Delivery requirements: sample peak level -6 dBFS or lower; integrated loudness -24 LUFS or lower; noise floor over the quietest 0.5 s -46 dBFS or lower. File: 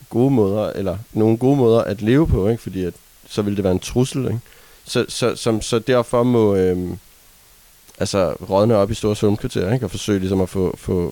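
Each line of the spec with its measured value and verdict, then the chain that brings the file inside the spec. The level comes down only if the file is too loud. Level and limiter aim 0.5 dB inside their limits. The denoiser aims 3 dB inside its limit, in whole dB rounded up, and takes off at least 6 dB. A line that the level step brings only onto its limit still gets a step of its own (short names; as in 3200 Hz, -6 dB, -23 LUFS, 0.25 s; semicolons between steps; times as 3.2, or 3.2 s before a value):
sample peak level -5.0 dBFS: fail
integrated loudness -19.0 LUFS: fail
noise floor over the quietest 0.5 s -49 dBFS: OK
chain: gain -5.5 dB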